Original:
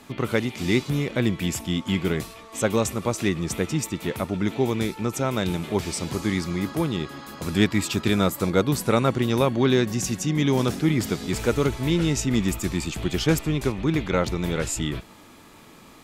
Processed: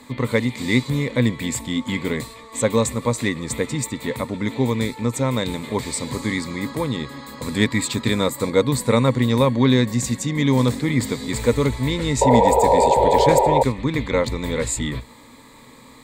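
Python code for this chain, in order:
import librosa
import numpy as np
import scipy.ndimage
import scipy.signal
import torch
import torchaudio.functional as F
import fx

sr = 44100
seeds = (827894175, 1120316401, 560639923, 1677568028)

y = fx.spec_paint(x, sr, seeds[0], shape='noise', start_s=12.21, length_s=1.42, low_hz=360.0, high_hz=980.0, level_db=-18.0)
y = fx.ripple_eq(y, sr, per_octave=1.0, db=11)
y = y * librosa.db_to_amplitude(1.0)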